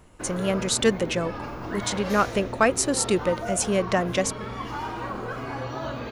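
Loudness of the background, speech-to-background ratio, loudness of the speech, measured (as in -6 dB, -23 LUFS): -33.5 LUFS, 8.5 dB, -25.0 LUFS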